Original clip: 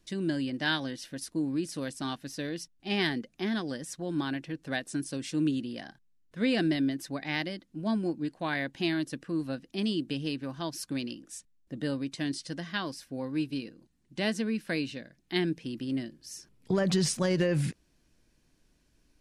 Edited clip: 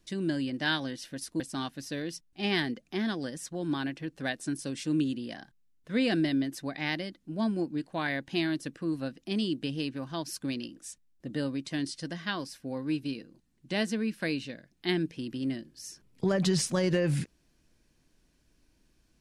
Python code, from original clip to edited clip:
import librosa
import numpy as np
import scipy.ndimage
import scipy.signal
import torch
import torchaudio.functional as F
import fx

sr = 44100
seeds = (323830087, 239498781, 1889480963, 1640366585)

y = fx.edit(x, sr, fx.cut(start_s=1.4, length_s=0.47), tone=tone)